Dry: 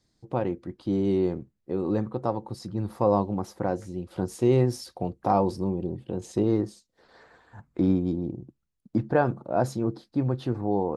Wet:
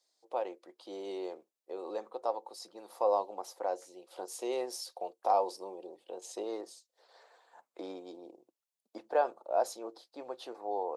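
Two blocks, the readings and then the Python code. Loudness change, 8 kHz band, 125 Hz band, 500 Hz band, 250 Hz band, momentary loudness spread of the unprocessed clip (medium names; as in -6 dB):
-9.0 dB, -0.5 dB, under -40 dB, -7.5 dB, -21.0 dB, 10 LU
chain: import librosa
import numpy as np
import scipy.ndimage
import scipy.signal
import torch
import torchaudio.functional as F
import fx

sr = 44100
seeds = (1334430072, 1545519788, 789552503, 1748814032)

y = scipy.signal.sosfilt(scipy.signal.butter(4, 550.0, 'highpass', fs=sr, output='sos'), x)
y = fx.peak_eq(y, sr, hz=1600.0, db=-10.0, octaves=1.4)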